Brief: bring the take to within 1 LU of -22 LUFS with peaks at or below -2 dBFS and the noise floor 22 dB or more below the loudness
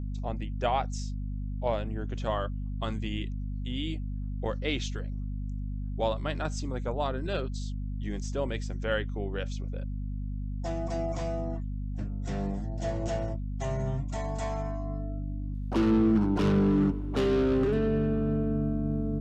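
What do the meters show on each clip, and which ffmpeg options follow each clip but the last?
hum 50 Hz; highest harmonic 250 Hz; hum level -31 dBFS; loudness -31.0 LUFS; peak level -14.0 dBFS; loudness target -22.0 LUFS
-> -af "bandreject=f=50:t=h:w=4,bandreject=f=100:t=h:w=4,bandreject=f=150:t=h:w=4,bandreject=f=200:t=h:w=4,bandreject=f=250:t=h:w=4"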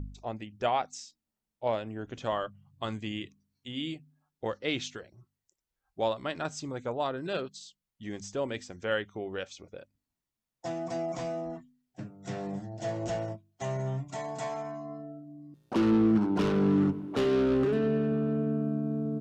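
hum not found; loudness -31.5 LUFS; peak level -16.0 dBFS; loudness target -22.0 LUFS
-> -af "volume=2.99"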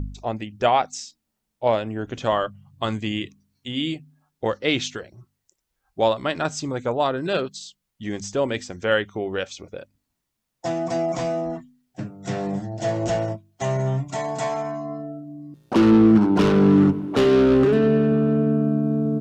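loudness -22.0 LUFS; peak level -6.5 dBFS; noise floor -79 dBFS

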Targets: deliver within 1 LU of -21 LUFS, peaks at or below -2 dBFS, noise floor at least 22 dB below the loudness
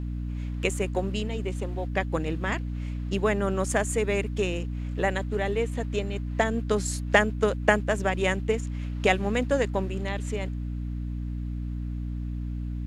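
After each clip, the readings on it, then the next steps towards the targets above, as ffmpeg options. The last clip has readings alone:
hum 60 Hz; highest harmonic 300 Hz; hum level -29 dBFS; loudness -28.0 LUFS; peak level -5.0 dBFS; loudness target -21.0 LUFS
-> -af "bandreject=f=60:t=h:w=6,bandreject=f=120:t=h:w=6,bandreject=f=180:t=h:w=6,bandreject=f=240:t=h:w=6,bandreject=f=300:t=h:w=6"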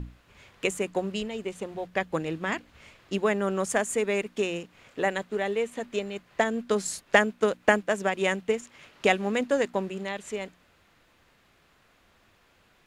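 hum not found; loudness -28.0 LUFS; peak level -4.5 dBFS; loudness target -21.0 LUFS
-> -af "volume=2.24,alimiter=limit=0.794:level=0:latency=1"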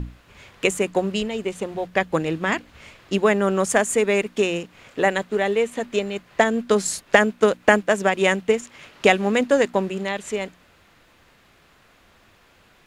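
loudness -21.5 LUFS; peak level -2.0 dBFS; noise floor -56 dBFS

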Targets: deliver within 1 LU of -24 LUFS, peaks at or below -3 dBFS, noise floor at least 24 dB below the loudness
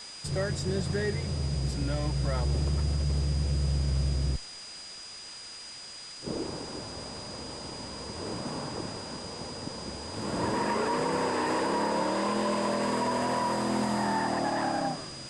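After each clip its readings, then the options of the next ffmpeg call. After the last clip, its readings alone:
steady tone 4.9 kHz; tone level -43 dBFS; noise floor -44 dBFS; noise floor target -55 dBFS; loudness -31.0 LUFS; peak level -18.0 dBFS; loudness target -24.0 LUFS
-> -af "bandreject=f=4900:w=30"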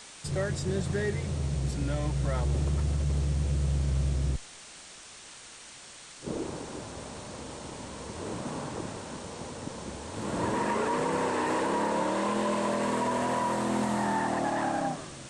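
steady tone not found; noise floor -48 dBFS; noise floor target -55 dBFS
-> -af "afftdn=nr=7:nf=-48"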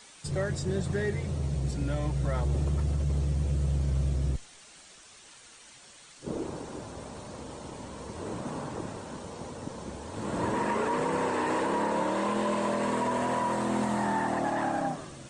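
noise floor -53 dBFS; noise floor target -55 dBFS
-> -af "afftdn=nr=6:nf=-53"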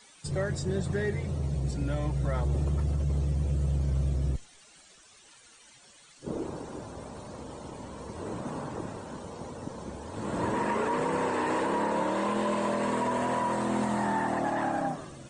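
noise floor -56 dBFS; loudness -30.5 LUFS; peak level -19.0 dBFS; loudness target -24.0 LUFS
-> -af "volume=2.11"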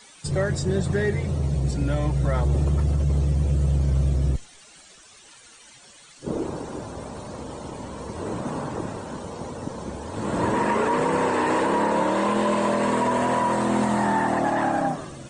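loudness -24.0 LUFS; peak level -12.5 dBFS; noise floor -50 dBFS

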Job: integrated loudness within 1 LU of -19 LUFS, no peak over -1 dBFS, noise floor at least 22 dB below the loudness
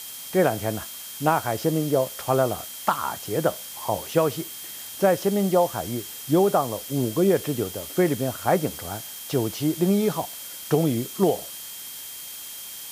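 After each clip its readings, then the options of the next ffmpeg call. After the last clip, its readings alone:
steady tone 3.2 kHz; tone level -45 dBFS; noise floor -38 dBFS; noise floor target -47 dBFS; loudness -25.0 LUFS; peak level -4.5 dBFS; loudness target -19.0 LUFS
-> -af "bandreject=f=3200:w=30"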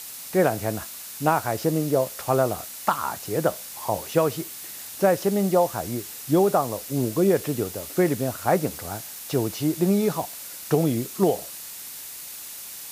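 steady tone not found; noise floor -39 dBFS; noise floor target -47 dBFS
-> -af "afftdn=nr=8:nf=-39"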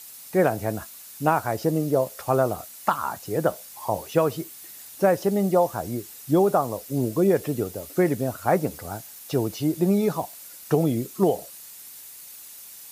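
noise floor -44 dBFS; noise floor target -47 dBFS
-> -af "afftdn=nr=6:nf=-44"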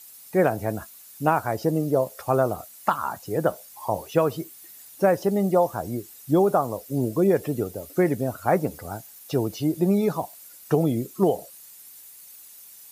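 noise floor -47 dBFS; loudness -24.5 LUFS; peak level -5.5 dBFS; loudness target -19.0 LUFS
-> -af "volume=1.88,alimiter=limit=0.891:level=0:latency=1"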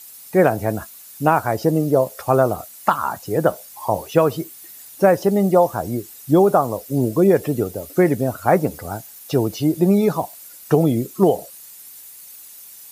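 loudness -19.0 LUFS; peak level -1.0 dBFS; noise floor -42 dBFS

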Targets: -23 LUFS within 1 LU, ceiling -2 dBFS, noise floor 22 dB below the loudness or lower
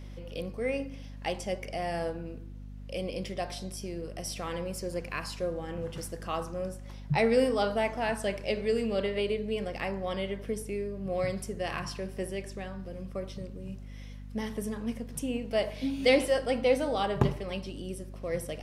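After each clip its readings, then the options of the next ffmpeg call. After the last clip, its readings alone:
hum 50 Hz; highest harmonic 250 Hz; hum level -41 dBFS; loudness -32.5 LUFS; peak level -9.5 dBFS; loudness target -23.0 LUFS
-> -af "bandreject=f=50:t=h:w=6,bandreject=f=100:t=h:w=6,bandreject=f=150:t=h:w=6,bandreject=f=200:t=h:w=6,bandreject=f=250:t=h:w=6"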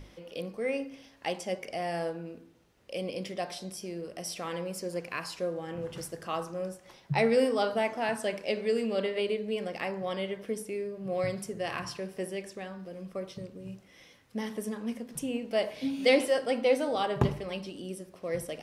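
hum not found; loudness -32.5 LUFS; peak level -10.5 dBFS; loudness target -23.0 LUFS
-> -af "volume=2.99,alimiter=limit=0.794:level=0:latency=1"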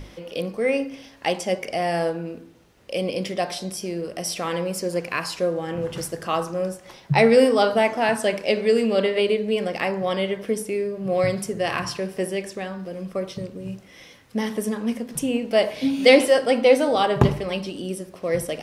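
loudness -23.0 LUFS; peak level -2.0 dBFS; noise floor -49 dBFS

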